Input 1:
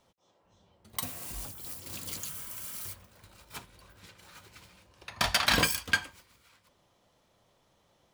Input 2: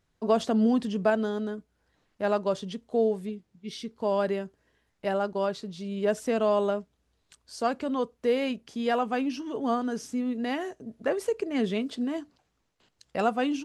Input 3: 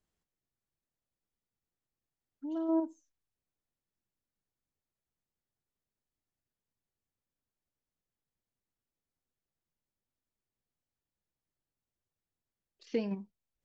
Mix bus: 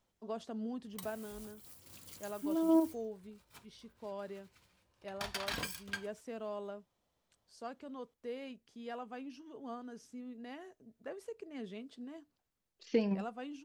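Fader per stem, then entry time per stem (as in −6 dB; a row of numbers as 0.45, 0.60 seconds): −14.0, −17.5, +2.0 decibels; 0.00, 0.00, 0.00 seconds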